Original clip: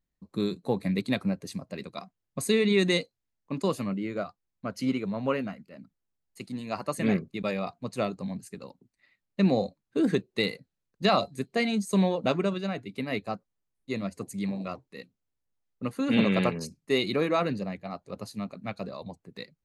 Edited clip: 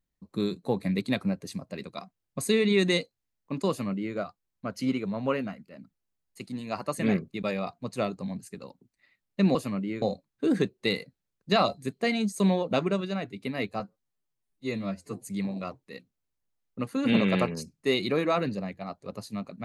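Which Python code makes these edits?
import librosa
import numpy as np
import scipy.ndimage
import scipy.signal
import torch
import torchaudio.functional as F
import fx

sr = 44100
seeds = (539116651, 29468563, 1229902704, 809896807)

y = fx.edit(x, sr, fx.duplicate(start_s=3.69, length_s=0.47, to_s=9.55),
    fx.stretch_span(start_s=13.33, length_s=0.98, factor=1.5), tone=tone)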